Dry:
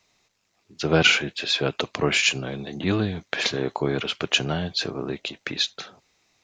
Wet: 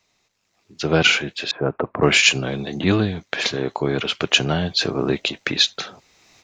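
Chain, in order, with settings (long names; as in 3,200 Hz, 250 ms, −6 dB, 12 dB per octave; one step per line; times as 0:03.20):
0:01.51–0:02.03: low-pass filter 1,400 Hz 24 dB per octave
automatic gain control gain up to 16.5 dB
level −1 dB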